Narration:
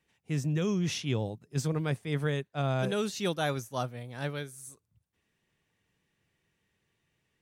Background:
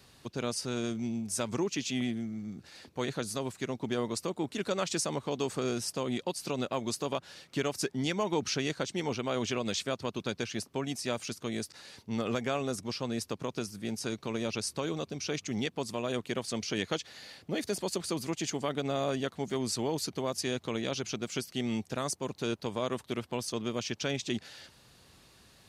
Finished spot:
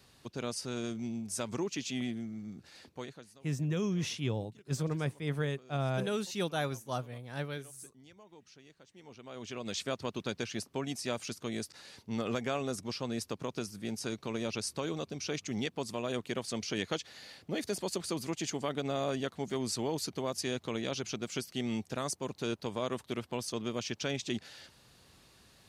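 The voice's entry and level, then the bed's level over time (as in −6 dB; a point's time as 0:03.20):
3.15 s, −3.0 dB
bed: 0:02.89 −3.5 dB
0:03.41 −26 dB
0:08.82 −26 dB
0:09.84 −2 dB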